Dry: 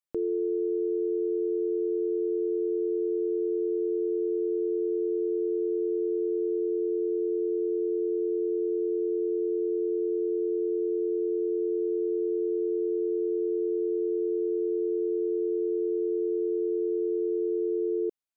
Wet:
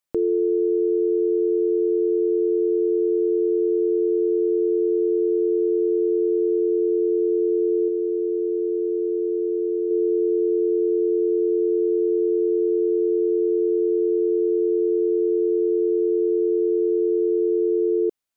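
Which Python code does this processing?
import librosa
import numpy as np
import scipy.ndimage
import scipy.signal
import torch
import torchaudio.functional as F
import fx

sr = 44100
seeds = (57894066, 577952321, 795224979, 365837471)

y = fx.peak_eq(x, sr, hz=510.0, db=-3.5, octaves=1.9, at=(7.88, 9.91))
y = y * librosa.db_to_amplitude(7.5)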